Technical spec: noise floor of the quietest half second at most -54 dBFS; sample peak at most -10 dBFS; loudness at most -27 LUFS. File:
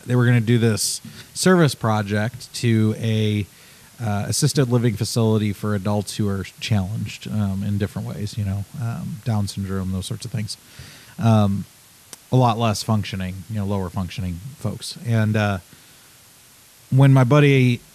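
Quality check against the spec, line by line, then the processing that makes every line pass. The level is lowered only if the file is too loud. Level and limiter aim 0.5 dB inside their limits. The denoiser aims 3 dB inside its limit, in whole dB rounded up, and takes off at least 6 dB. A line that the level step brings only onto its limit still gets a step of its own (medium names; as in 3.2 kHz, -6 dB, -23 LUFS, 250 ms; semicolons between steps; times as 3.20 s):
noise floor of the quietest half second -50 dBFS: fail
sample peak -5.5 dBFS: fail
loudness -21.0 LUFS: fail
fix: trim -6.5 dB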